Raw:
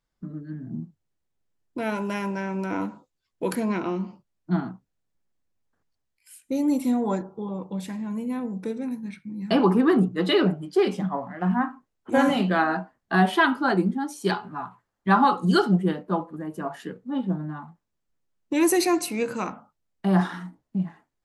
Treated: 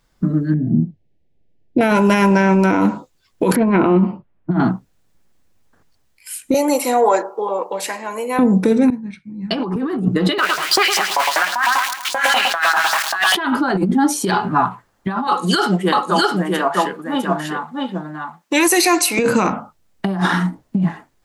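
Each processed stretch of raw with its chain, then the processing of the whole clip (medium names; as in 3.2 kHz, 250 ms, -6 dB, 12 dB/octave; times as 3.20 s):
0.54–1.81 s: Butterworth band-stop 1.2 kHz, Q 0.9 + tape spacing loss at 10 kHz 34 dB
3.56–4.60 s: distance through air 410 m + level-controlled noise filter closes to 2.4 kHz, open at -20 dBFS
6.54–8.39 s: high-pass 460 Hz 24 dB/octave + band-stop 3.5 kHz, Q 6.1
8.90–9.76 s: low-pass 7 kHz + three bands expanded up and down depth 100%
10.38–13.35 s: jump at every zero crossing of -31 dBFS + LFO high-pass saw up 5.1 Hz 810–5600 Hz + feedback delay 109 ms, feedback 46%, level -12 dB
15.27–19.19 s: high-pass 1.2 kHz 6 dB/octave + delay 654 ms -3 dB
whole clip: compressor with a negative ratio -29 dBFS, ratio -1; loudness maximiser +19 dB; trim -4.5 dB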